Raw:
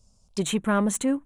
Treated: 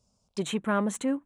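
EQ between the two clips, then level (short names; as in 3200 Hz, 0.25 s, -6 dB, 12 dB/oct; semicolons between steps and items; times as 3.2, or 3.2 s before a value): HPF 190 Hz 6 dB/oct; LPF 4000 Hz 6 dB/oct; -2.0 dB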